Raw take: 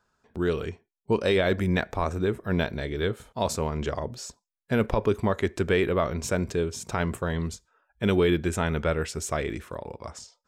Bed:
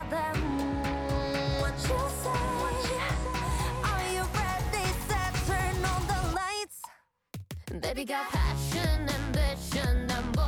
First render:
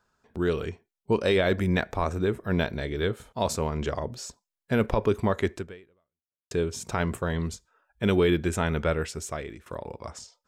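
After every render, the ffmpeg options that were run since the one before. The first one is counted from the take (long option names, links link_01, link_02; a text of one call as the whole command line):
ffmpeg -i in.wav -filter_complex "[0:a]asplit=3[link_01][link_02][link_03];[link_01]atrim=end=6.51,asetpts=PTS-STARTPTS,afade=type=out:start_time=5.53:duration=0.98:curve=exp[link_04];[link_02]atrim=start=6.51:end=9.66,asetpts=PTS-STARTPTS,afade=type=in:duration=0.004:curve=hsin,afade=type=out:start_time=2.42:duration=0.73:silence=0.199526[link_05];[link_03]atrim=start=9.66,asetpts=PTS-STARTPTS,afade=type=in:duration=0.004:curve=hsin:silence=0.199526[link_06];[link_04][link_05][link_06]concat=n=3:v=0:a=1" out.wav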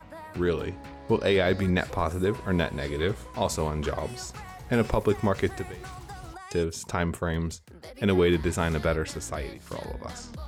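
ffmpeg -i in.wav -i bed.wav -filter_complex "[1:a]volume=-12dB[link_01];[0:a][link_01]amix=inputs=2:normalize=0" out.wav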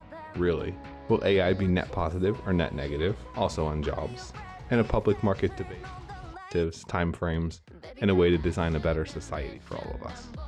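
ffmpeg -i in.wav -af "lowpass=4300,adynamicequalizer=threshold=0.00891:dfrequency=1600:dqfactor=0.86:tfrequency=1600:tqfactor=0.86:attack=5:release=100:ratio=0.375:range=3:mode=cutabove:tftype=bell" out.wav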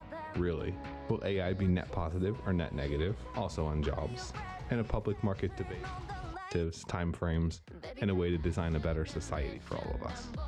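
ffmpeg -i in.wav -filter_complex "[0:a]alimiter=limit=-19.5dB:level=0:latency=1:release=320,acrossover=split=180[link_01][link_02];[link_02]acompressor=threshold=-36dB:ratio=2[link_03];[link_01][link_03]amix=inputs=2:normalize=0" out.wav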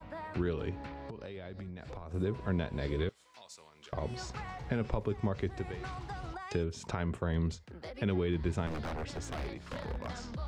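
ffmpeg -i in.wav -filter_complex "[0:a]asettb=1/sr,asplit=3[link_01][link_02][link_03];[link_01]atrim=end=0.864[link_04];[link_02]atrim=start=0.86:end=2.14,asetpts=PTS-STARTPTS,afade=type=in:duration=0.004:curve=qsin,afade=type=out:start_time=1.276:duration=0.004:curve=qsin,acompressor=threshold=-39dB:ratio=12:attack=3.2:release=140:knee=1:detection=peak[link_05];[link_03]atrim=start=2.136[link_06];[link_04][link_05]acrossfade=duration=0.004:curve1=hsin:curve2=qsin[link_07];[link_07][link_06]acrossfade=duration=0.004:curve1=qsin:curve2=hsin,asettb=1/sr,asplit=3[link_08][link_09][link_10];[link_08]atrim=end=3.094[link_11];[link_09]atrim=start=3.09:end=3.93,asetpts=PTS-STARTPTS,afade=type=in:duration=0.004:curve=qsin,afade=type=out:start_time=0.836:duration=0.004:curve=qsin,aderivative[link_12];[link_10]atrim=start=3.926[link_13];[link_11][link_12]acrossfade=duration=0.004:curve1=hsin:curve2=qsin[link_14];[link_14][link_13]acrossfade=duration=0.004:curve1=qsin:curve2=hsin,asettb=1/sr,asplit=3[link_15][link_16][link_17];[link_15]atrim=end=8.674[link_18];[link_16]atrim=start=8.67:end=10.08,asetpts=PTS-STARTPTS,afade=type=in:duration=0.004:curve=qsin,afade=type=out:start_time=1.406:duration=0.004:curve=qsin,aeval=exprs='0.0251*(abs(mod(val(0)/0.0251+3,4)-2)-1)':channel_layout=same[link_19];[link_17]atrim=start=10.076[link_20];[link_18][link_19]acrossfade=duration=0.004:curve1=hsin:curve2=qsin[link_21];[link_21][link_20]acrossfade=duration=0.004:curve1=qsin:curve2=hsin" out.wav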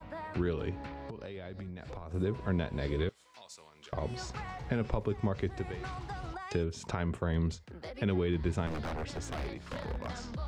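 ffmpeg -i in.wav -af "volume=1dB" out.wav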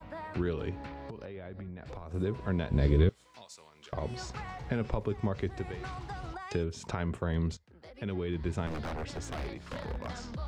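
ffmpeg -i in.wav -filter_complex "[0:a]asettb=1/sr,asplit=3[link_01][link_02][link_03];[link_01]atrim=end=1.254[link_04];[link_02]atrim=start=1.25:end=1.86,asetpts=PTS-STARTPTS,afade=type=in:duration=0.004:curve=qsin,afade=type=out:start_time=0.606:duration=0.004:curve=qsin,lowpass=2400[link_05];[link_03]atrim=start=1.856[link_06];[link_04][link_05]acrossfade=duration=0.004:curve1=hsin:curve2=qsin[link_07];[link_07][link_06]acrossfade=duration=0.004:curve1=qsin:curve2=hsin,asettb=1/sr,asplit=3[link_08][link_09][link_10];[link_08]atrim=end=2.694[link_11];[link_09]atrim=start=2.69:end=3.45,asetpts=PTS-STARTPTS,afade=type=in:duration=0.004:curve=qsin,afade=type=out:start_time=0.756:duration=0.004:curve=qsin,lowshelf=frequency=330:gain=11.5[link_12];[link_10]atrim=start=3.446[link_13];[link_11][link_12]acrossfade=duration=0.004:curve1=hsin:curve2=qsin[link_14];[link_14][link_13]acrossfade=duration=0.004:curve1=qsin:curve2=hsin,asplit=2[link_15][link_16];[link_15]atrim=end=7.57,asetpts=PTS-STARTPTS,afade=type=out:start_time=7.566:duration=0.004:curve=hsin:silence=0.188365[link_17];[link_16]atrim=start=7.57,asetpts=PTS-STARTPTS,afade=type=in:duration=1.15:silence=0.188365[link_18];[link_17][link_18]concat=n=2:v=0:a=1" out.wav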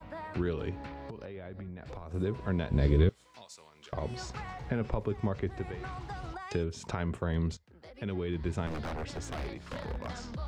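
ffmpeg -i in.wav -filter_complex "[0:a]asettb=1/sr,asplit=3[link_01][link_02][link_03];[link_01]atrim=end=4.534[link_04];[link_02]atrim=start=4.53:end=6.1,asetpts=PTS-STARTPTS,afade=type=in:duration=0.004:curve=qsin,afade=type=out:start_time=1.566:duration=0.004:curve=qsin,acrossover=split=2700[link_05][link_06];[link_06]acompressor=threshold=-57dB:ratio=4:attack=1:release=60[link_07];[link_05][link_07]amix=inputs=2:normalize=0[link_08];[link_03]atrim=start=6.096[link_09];[link_04][link_08]acrossfade=duration=0.004:curve1=hsin:curve2=qsin[link_10];[link_10][link_09]acrossfade=duration=0.004:curve1=qsin:curve2=hsin" out.wav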